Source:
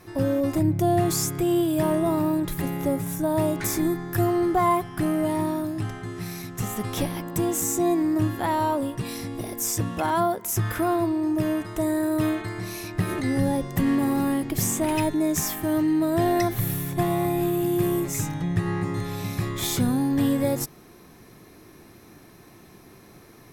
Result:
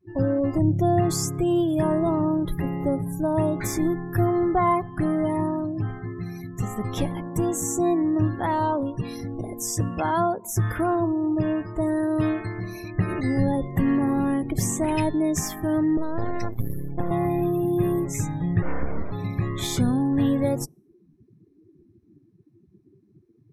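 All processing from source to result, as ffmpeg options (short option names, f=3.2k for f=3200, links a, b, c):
-filter_complex "[0:a]asettb=1/sr,asplit=3[a][b][c];[a]atrim=end=15.974[d];[b]atrim=start=15.97:end=17.11,asetpts=PTS-STARTPTS,afade=t=in:d=0.004:c=qsin,afade=t=out:st=1.136:d=0.004:c=qsin,acrossover=split=220|3000[e][f][g];[f]acompressor=threshold=-26dB:ratio=2:attack=3.2:release=140:knee=2.83:detection=peak[h];[e][h][g]amix=inputs=3:normalize=0,aeval=exprs='max(val(0),0)':c=same[i];[c]atrim=start=17.106[j];[d][i]acrossfade=d=0.004:c1=hsin:c2=qsin[k];[k][j]acrossfade=d=0.004:c1=qsin:c2=hsin,asettb=1/sr,asplit=3[l][m][n];[l]atrim=end=18.624[o];[m]atrim=start=18.62:end=19.12,asetpts=PTS-STARTPTS,afade=t=in:d=0.004:c=qsin,afade=t=out:st=0.496:d=0.004:c=qsin,acrossover=split=4300[p][q];[q]acompressor=threshold=-53dB:ratio=4:attack=1:release=60[r];[p][r]amix=inputs=2:normalize=0,aeval=exprs='abs(val(0))':c=same[s];[n]atrim=start=19.116[t];[o][s]acrossfade=d=0.004:c1=hsin:c2=qsin[u];[u][t]acrossfade=d=0.004:c1=qsin:c2=hsin,afftdn=nr=35:nf=-37,lowpass=10k,lowshelf=f=88:g=6"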